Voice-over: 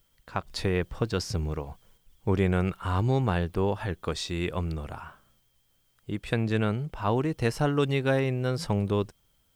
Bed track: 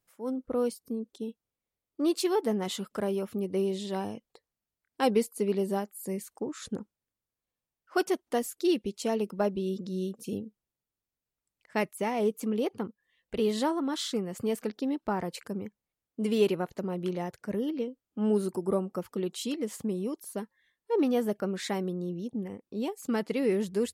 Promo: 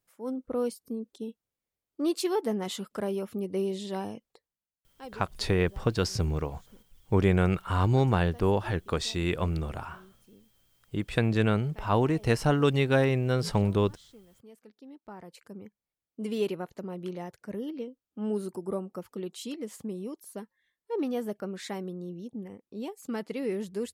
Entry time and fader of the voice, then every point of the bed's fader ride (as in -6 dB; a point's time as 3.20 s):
4.85 s, +1.5 dB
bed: 4.29 s -1 dB
5.24 s -22.5 dB
14.56 s -22.5 dB
15.87 s -4.5 dB